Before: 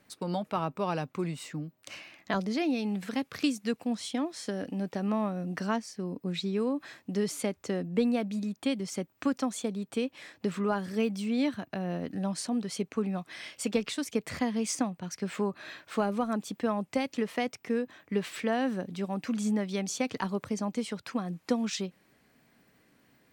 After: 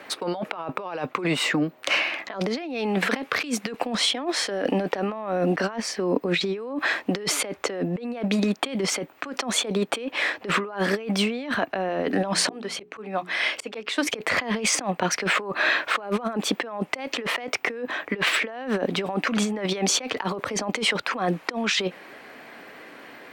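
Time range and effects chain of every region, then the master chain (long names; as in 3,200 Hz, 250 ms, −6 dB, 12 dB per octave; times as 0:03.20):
0:11.87–0:14.07: volume swells 751 ms + mains-hum notches 60/120/180/240/300/360/420 Hz
whole clip: three-way crossover with the lows and the highs turned down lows −21 dB, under 330 Hz, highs −14 dB, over 3,500 Hz; compressor whose output falls as the input rises −45 dBFS, ratio −1; boost into a limiter +27 dB; level −9 dB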